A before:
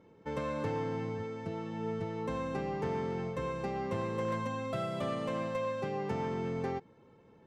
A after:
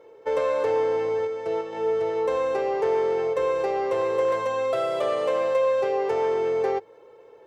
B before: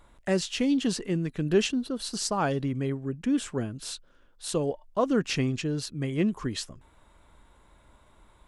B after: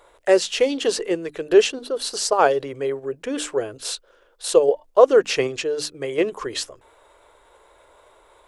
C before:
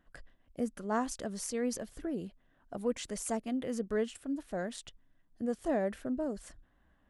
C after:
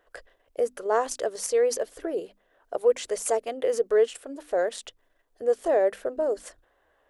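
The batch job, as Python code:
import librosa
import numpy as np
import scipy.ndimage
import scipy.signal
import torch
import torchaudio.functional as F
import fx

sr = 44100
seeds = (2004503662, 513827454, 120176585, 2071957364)

p1 = fx.level_steps(x, sr, step_db=13)
p2 = x + F.gain(torch.from_numpy(p1), 1.5).numpy()
p3 = fx.low_shelf_res(p2, sr, hz=310.0, db=-13.0, q=3.0)
p4 = fx.hum_notches(p3, sr, base_hz=50, count=6)
y = F.gain(torch.from_numpy(p4), 3.0).numpy()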